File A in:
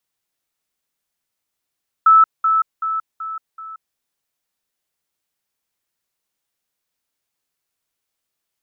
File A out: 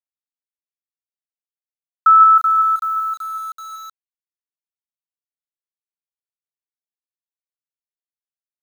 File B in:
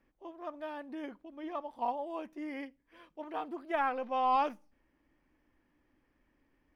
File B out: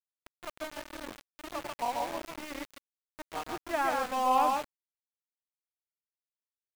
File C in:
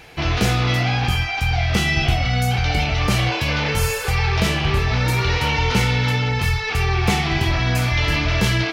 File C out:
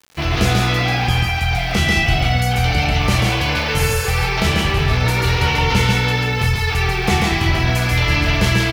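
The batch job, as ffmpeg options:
-af "aecho=1:1:139.9|174.9:0.708|0.251,aeval=exprs='val(0)*gte(abs(val(0)),0.0158)':c=same,volume=1dB"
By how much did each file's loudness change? +3.0, +3.0, +2.5 LU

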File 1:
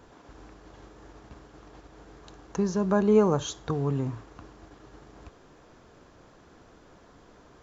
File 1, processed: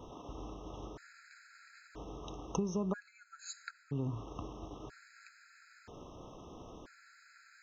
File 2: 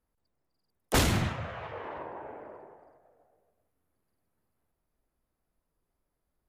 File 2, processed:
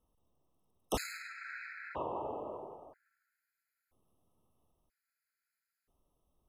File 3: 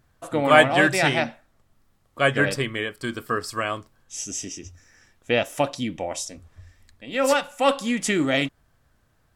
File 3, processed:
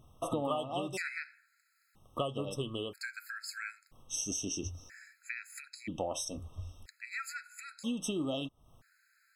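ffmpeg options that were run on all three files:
-af "acompressor=threshold=-35dB:ratio=10,afftfilt=real='re*gt(sin(2*PI*0.51*pts/sr)*(1-2*mod(floor(b*sr/1024/1300),2)),0)':imag='im*gt(sin(2*PI*0.51*pts/sr)*(1-2*mod(floor(b*sr/1024/1300),2)),0)':win_size=1024:overlap=0.75,volume=4dB"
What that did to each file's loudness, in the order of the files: -17.0, -10.0, -15.5 LU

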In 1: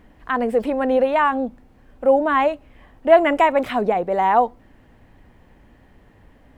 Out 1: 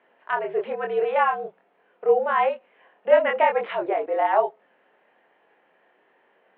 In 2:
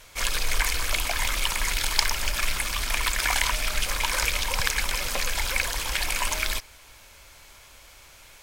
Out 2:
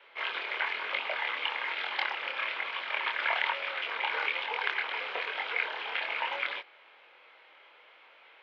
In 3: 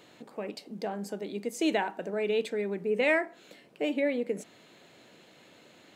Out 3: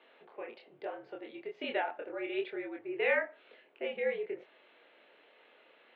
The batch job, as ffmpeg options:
-af "flanger=delay=22.5:depth=5.1:speed=1.1,highpass=f=470:t=q:w=0.5412,highpass=f=470:t=q:w=1.307,lowpass=f=3.3k:t=q:w=0.5176,lowpass=f=3.3k:t=q:w=0.7071,lowpass=f=3.3k:t=q:w=1.932,afreqshift=-63"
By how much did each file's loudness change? -4.0, -6.0, -5.5 LU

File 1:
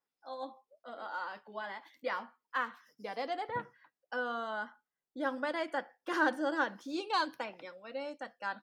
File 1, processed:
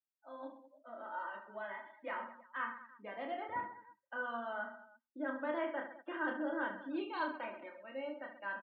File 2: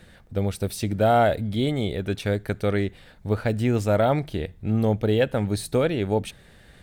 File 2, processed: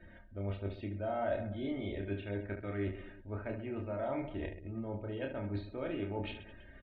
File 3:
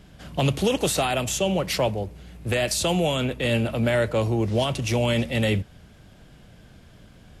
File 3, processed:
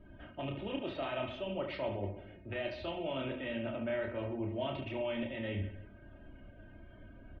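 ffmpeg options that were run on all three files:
-filter_complex "[0:a]areverse,acompressor=threshold=-30dB:ratio=12,areverse,lowpass=f=3k:w=0.5412,lowpass=f=3k:w=1.3066,bandreject=f=60:t=h:w=6,bandreject=f=120:t=h:w=6,bandreject=f=180:t=h:w=6,bandreject=f=240:t=h:w=6,aecho=1:1:3.2:0.62,asplit=2[a][b];[b]aecho=0:1:30|72|130.8|213.1|328.4:0.631|0.398|0.251|0.158|0.1[c];[a][c]amix=inputs=2:normalize=0,afftdn=nr=16:nf=-54,volume=-6dB"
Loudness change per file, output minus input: -4.5, -15.0, -14.5 LU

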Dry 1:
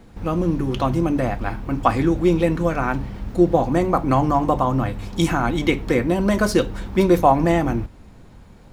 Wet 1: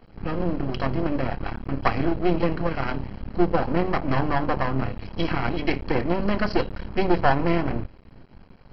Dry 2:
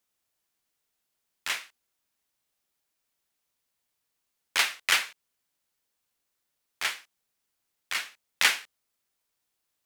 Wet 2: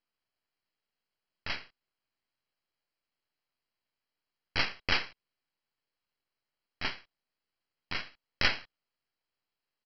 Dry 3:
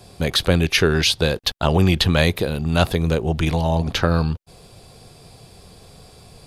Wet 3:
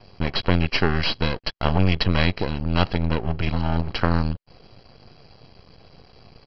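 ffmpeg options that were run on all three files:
-af "aresample=11025,aeval=exprs='max(val(0),0)':c=same,aresample=44100,asuperstop=centerf=3600:order=12:qfactor=7.9"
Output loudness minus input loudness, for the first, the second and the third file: -5.5, -5.5, -4.0 LU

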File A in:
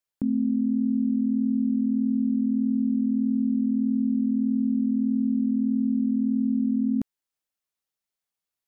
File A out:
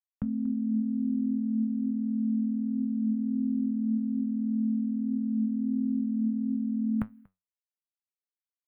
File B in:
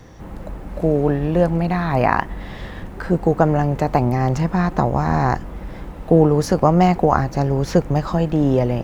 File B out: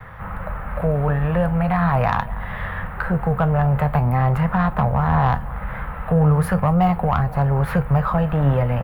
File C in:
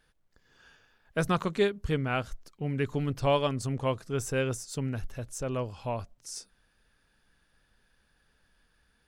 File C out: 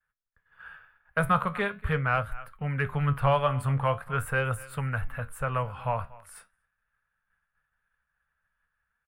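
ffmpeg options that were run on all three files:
-filter_complex "[0:a]aecho=1:1:237:0.0708,acrossover=split=260|870|3300[a][b][c][d];[b]alimiter=limit=-15dB:level=0:latency=1:release=339[e];[c]acompressor=threshold=-41dB:ratio=6[f];[a][e][f][d]amix=inputs=4:normalize=0,firequalizer=gain_entry='entry(150,0);entry(330,-20);entry(470,-4);entry(1300,12);entry(5900,-30);entry(9600,-6)':delay=0.05:min_phase=1,agate=range=-33dB:threshold=-51dB:ratio=3:detection=peak,asoftclip=type=tanh:threshold=-12dB,highshelf=f=11k:g=7,flanger=delay=9.3:depth=6.1:regen=70:speed=0.43:shape=sinusoidal,volume=8.5dB"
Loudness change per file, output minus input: -5.0, -1.5, +2.5 LU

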